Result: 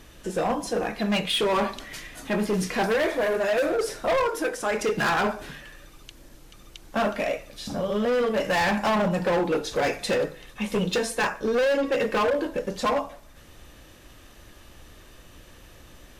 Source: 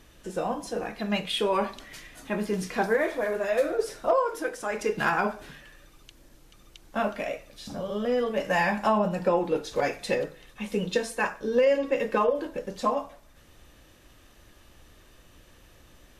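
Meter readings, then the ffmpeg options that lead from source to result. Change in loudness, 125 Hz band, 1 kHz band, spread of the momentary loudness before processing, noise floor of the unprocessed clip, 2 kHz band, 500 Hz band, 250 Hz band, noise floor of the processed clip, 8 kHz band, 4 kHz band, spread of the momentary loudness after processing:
+2.5 dB, +4.0 dB, +1.5 dB, 11 LU, -56 dBFS, +3.0 dB, +2.0 dB, +3.5 dB, -50 dBFS, +6.0 dB, +5.5 dB, 9 LU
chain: -af "acontrast=44,asoftclip=type=hard:threshold=-20dB"

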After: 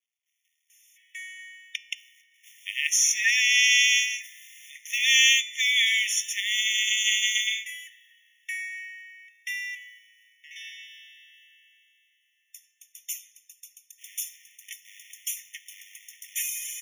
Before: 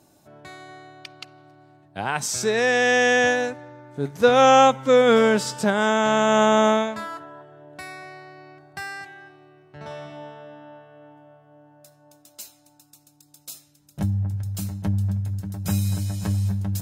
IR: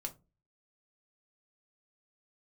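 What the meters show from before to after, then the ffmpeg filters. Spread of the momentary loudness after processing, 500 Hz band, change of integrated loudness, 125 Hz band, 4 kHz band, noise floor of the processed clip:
23 LU, under -40 dB, -2.0 dB, under -40 dB, +7.5 dB, -73 dBFS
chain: -filter_complex "[0:a]acrossover=split=510[a][b];[b]adelay=700[c];[a][c]amix=inputs=2:normalize=0,asplit=2[d][e];[e]acrusher=bits=5:mode=log:mix=0:aa=0.000001,volume=-8dB[f];[d][f]amix=inputs=2:normalize=0,bandreject=f=217.4:t=h:w=4,bandreject=f=434.8:t=h:w=4,bandreject=f=652.2:t=h:w=4,bandreject=f=869.6:t=h:w=4,bandreject=f=1.087k:t=h:w=4,bandreject=f=1.3044k:t=h:w=4,bandreject=f=1.5218k:t=h:w=4,bandreject=f=1.7392k:t=h:w=4,bandreject=f=1.9566k:t=h:w=4,bandreject=f=2.174k:t=h:w=4,bandreject=f=2.3914k:t=h:w=4,bandreject=f=2.6088k:t=h:w=4,bandreject=f=2.8262k:t=h:w=4,bandreject=f=3.0436k:t=h:w=4,bandreject=f=3.261k:t=h:w=4,bandreject=f=3.4784k:t=h:w=4,bandreject=f=3.6958k:t=h:w=4,bandreject=f=3.9132k:t=h:w=4,bandreject=f=4.1306k:t=h:w=4,bandreject=f=4.348k:t=h:w=4,bandreject=f=4.5654k:t=h:w=4,bandreject=f=4.7828k:t=h:w=4,bandreject=f=5.0002k:t=h:w=4,bandreject=f=5.2176k:t=h:w=4,bandreject=f=5.435k:t=h:w=4,bandreject=f=5.6524k:t=h:w=4,bandreject=f=5.8698k:t=h:w=4,bandreject=f=6.0872k:t=h:w=4,bandreject=f=6.3046k:t=h:w=4,bandreject=f=6.522k:t=h:w=4,bandreject=f=6.7394k:t=h:w=4,bandreject=f=6.9568k:t=h:w=4,bandreject=f=7.1742k:t=h:w=4,bandreject=f=7.3916k:t=h:w=4,bandreject=f=7.609k:t=h:w=4,bandreject=f=7.8264k:t=h:w=4,afftfilt=real='re*eq(mod(floor(b*sr/1024/1800),2),1)':imag='im*eq(mod(floor(b*sr/1024/1800),2),1)':win_size=1024:overlap=0.75,volume=6dB"

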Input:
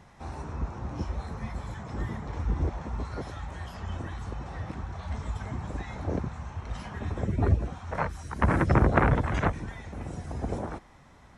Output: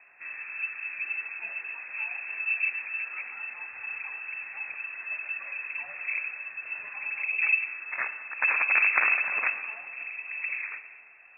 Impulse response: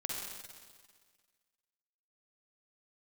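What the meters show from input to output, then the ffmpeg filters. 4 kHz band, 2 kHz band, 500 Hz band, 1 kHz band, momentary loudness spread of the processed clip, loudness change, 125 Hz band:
under -20 dB, +12.0 dB, -17.5 dB, -6.5 dB, 13 LU, +2.5 dB, under -40 dB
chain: -filter_complex "[0:a]asplit=2[a][b];[1:a]atrim=start_sample=2205,lowpass=3.2k[c];[b][c]afir=irnorm=-1:irlink=0,volume=-7.5dB[d];[a][d]amix=inputs=2:normalize=0,lowpass=f=2.3k:t=q:w=0.5098,lowpass=f=2.3k:t=q:w=0.6013,lowpass=f=2.3k:t=q:w=0.9,lowpass=f=2.3k:t=q:w=2.563,afreqshift=-2700,volume=-4.5dB"

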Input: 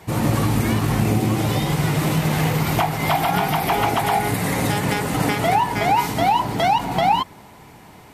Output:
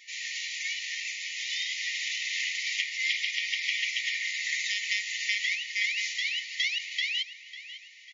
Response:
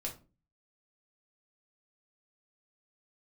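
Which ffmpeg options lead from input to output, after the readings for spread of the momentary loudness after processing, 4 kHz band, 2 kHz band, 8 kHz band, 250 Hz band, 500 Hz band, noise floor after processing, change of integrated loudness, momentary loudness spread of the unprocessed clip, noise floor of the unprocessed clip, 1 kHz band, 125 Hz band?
6 LU, 0.0 dB, -1.5 dB, -5.0 dB, under -40 dB, under -40 dB, -49 dBFS, -9.0 dB, 2 LU, -45 dBFS, under -40 dB, under -40 dB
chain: -filter_complex "[0:a]afftfilt=real='re*between(b*sr/4096,1800,7200)':imag='im*between(b*sr/4096,1800,7200)':win_size=4096:overlap=0.75,asplit=2[a][b];[b]adelay=548,lowpass=f=4.4k:p=1,volume=-13dB,asplit=2[c][d];[d]adelay=548,lowpass=f=4.4k:p=1,volume=0.52,asplit=2[e][f];[f]adelay=548,lowpass=f=4.4k:p=1,volume=0.52,asplit=2[g][h];[h]adelay=548,lowpass=f=4.4k:p=1,volume=0.52,asplit=2[i][j];[j]adelay=548,lowpass=f=4.4k:p=1,volume=0.52[k];[c][e][g][i][k]amix=inputs=5:normalize=0[l];[a][l]amix=inputs=2:normalize=0"

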